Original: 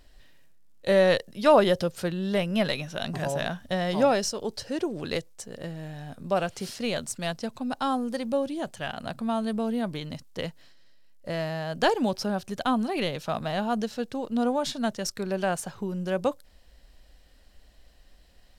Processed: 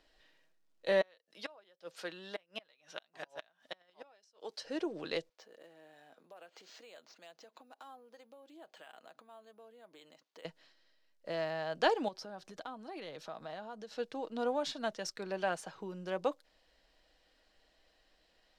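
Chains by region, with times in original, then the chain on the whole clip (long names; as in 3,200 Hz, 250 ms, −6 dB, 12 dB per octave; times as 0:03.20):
0:01.01–0:04.65: high-pass filter 750 Hz 6 dB per octave + gate with flip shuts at −20 dBFS, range −31 dB
0:05.29–0:10.45: bad sample-rate conversion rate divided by 4×, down filtered, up hold + downward compressor 12 to 1, threshold −42 dBFS + high-pass filter 340 Hz
0:12.08–0:13.92: parametric band 2,700 Hz −4.5 dB 0.55 octaves + downward compressor, threshold −34 dBFS
whole clip: three-way crossover with the lows and the highs turned down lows −16 dB, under 270 Hz, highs −14 dB, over 6,300 Hz; comb filter 6.3 ms, depth 31%; level −6 dB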